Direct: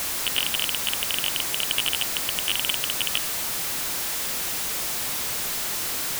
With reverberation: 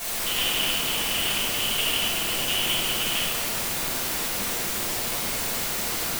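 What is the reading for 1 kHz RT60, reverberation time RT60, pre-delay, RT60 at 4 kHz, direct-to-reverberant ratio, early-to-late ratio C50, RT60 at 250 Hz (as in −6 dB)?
2.0 s, 2.5 s, 4 ms, 1.1 s, −12.0 dB, −3.0 dB, 4.1 s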